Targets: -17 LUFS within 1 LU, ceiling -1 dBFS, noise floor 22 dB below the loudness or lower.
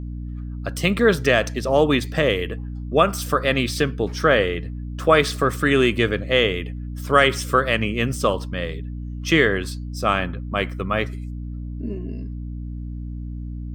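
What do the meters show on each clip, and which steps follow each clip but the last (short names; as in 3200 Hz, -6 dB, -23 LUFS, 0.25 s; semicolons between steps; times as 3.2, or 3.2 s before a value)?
hum 60 Hz; harmonics up to 300 Hz; hum level -28 dBFS; loudness -21.0 LUFS; peak -2.5 dBFS; loudness target -17.0 LUFS
-> notches 60/120/180/240/300 Hz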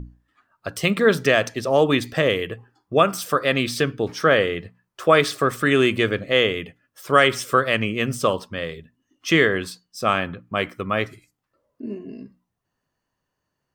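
hum none; loudness -20.5 LUFS; peak -2.5 dBFS; loudness target -17.0 LUFS
-> gain +3.5 dB; limiter -1 dBFS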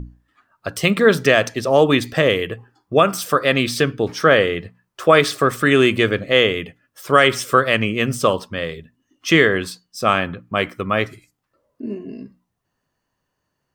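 loudness -17.5 LUFS; peak -1.0 dBFS; noise floor -76 dBFS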